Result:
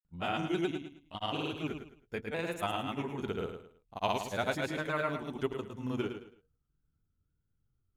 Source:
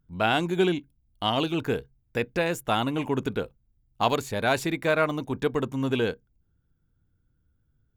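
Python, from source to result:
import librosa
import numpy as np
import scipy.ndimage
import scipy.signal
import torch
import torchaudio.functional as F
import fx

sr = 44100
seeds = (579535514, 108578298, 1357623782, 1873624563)

p1 = fx.pitch_ramps(x, sr, semitones=-2.0, every_ms=609)
p2 = fx.granulator(p1, sr, seeds[0], grain_ms=100.0, per_s=20.0, spray_ms=100.0, spread_st=0)
p3 = p2 + fx.echo_feedback(p2, sr, ms=108, feedback_pct=29, wet_db=-8.0, dry=0)
y = p3 * 10.0 ** (-6.5 / 20.0)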